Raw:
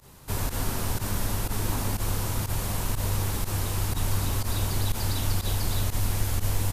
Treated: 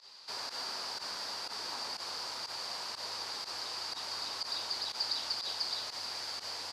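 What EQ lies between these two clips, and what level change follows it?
high-pass 740 Hz 12 dB/octave; dynamic bell 3.7 kHz, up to -7 dB, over -52 dBFS, Q 0.71; resonant low-pass 4.7 kHz, resonance Q 11; -4.5 dB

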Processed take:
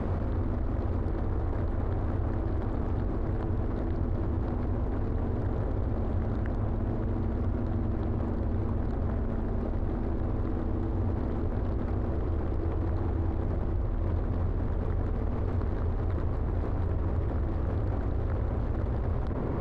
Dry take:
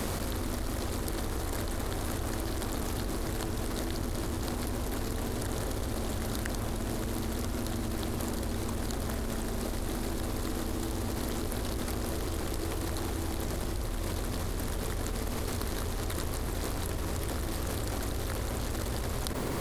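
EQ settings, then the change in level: low-pass 1.2 kHz 12 dB/octave; peaking EQ 91 Hz +5 dB 0.54 oct; bass shelf 240 Hz +4 dB; 0.0 dB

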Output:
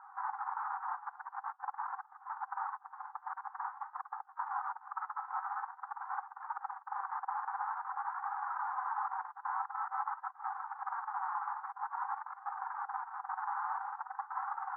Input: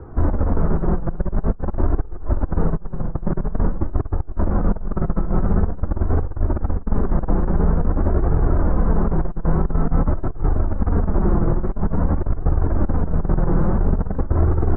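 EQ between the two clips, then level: brick-wall FIR high-pass 750 Hz; low-pass 1.6 kHz 24 dB/octave; -1.5 dB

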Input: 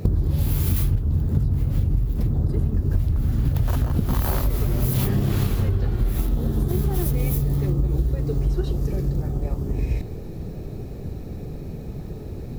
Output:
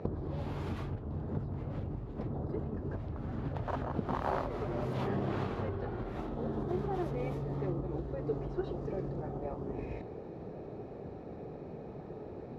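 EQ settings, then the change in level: band-pass filter 780 Hz, Q 0.94; distance through air 75 m; 0.0 dB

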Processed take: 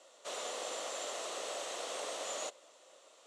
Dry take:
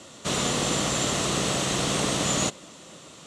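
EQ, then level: ladder high-pass 460 Hz, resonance 45%; -6.5 dB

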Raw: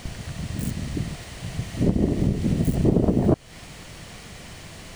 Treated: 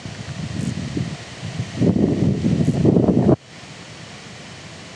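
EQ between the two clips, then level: high-pass 97 Hz 24 dB/octave; low-pass 7.5 kHz 24 dB/octave; +5.0 dB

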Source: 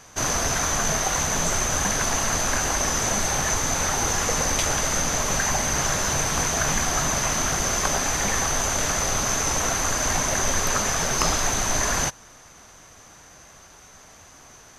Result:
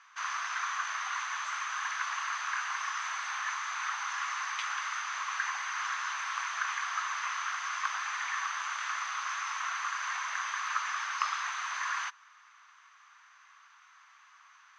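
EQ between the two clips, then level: elliptic high-pass 1.1 kHz, stop band 60 dB; tape spacing loss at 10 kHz 36 dB; +2.0 dB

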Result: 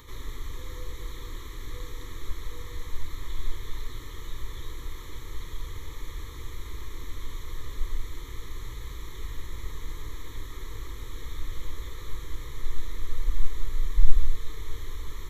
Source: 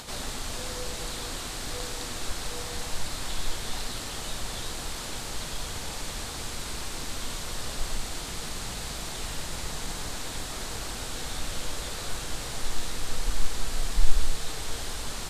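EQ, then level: bass shelf 210 Hz +5 dB; static phaser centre 1 kHz, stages 8; static phaser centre 2.7 kHz, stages 6; -1.5 dB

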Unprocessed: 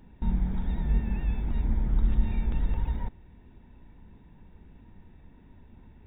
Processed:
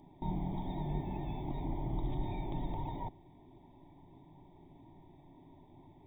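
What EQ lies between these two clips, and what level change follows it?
boxcar filter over 32 samples; tilt EQ +4.5 dB/octave; static phaser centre 320 Hz, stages 8; +12.5 dB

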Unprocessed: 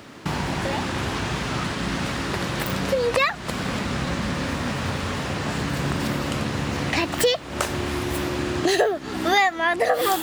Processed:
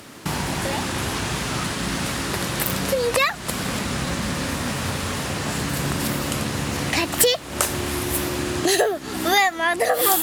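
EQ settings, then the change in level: peaking EQ 12 kHz +14.5 dB 1.3 oct; 0.0 dB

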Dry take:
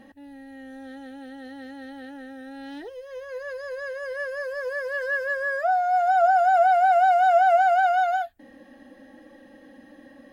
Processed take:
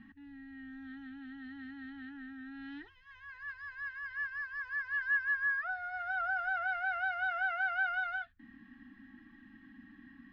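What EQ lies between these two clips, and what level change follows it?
Chebyshev band-stop 210–1400 Hz, order 2; distance through air 270 m; treble shelf 3.9 kHz -8 dB; 0.0 dB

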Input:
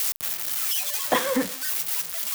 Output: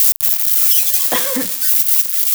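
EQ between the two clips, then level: bass shelf 280 Hz +6.5 dB; treble shelf 2.3 kHz +11 dB; treble shelf 10 kHz +6 dB; -1.5 dB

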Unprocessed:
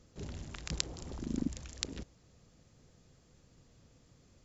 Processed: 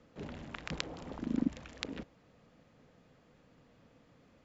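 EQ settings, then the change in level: three-band isolator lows -14 dB, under 180 Hz, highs -20 dB, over 3.2 kHz; peaking EQ 370 Hz -9 dB 0.2 oct; +5.5 dB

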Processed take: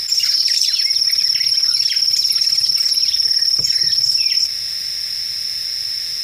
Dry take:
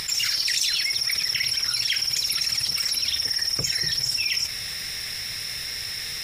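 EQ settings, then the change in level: peaking EQ 5.2 kHz +13.5 dB 0.35 oct; treble shelf 8.8 kHz +6.5 dB; -3.0 dB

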